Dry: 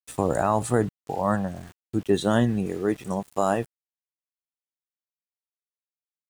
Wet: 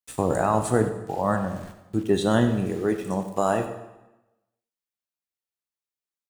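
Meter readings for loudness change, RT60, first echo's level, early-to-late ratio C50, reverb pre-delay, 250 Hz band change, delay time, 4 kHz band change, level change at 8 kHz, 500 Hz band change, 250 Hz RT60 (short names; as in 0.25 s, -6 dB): +0.5 dB, 1.0 s, -14.5 dB, 8.5 dB, 12 ms, +0.5 dB, 95 ms, +1.0 dB, +1.0 dB, +1.0 dB, 1.0 s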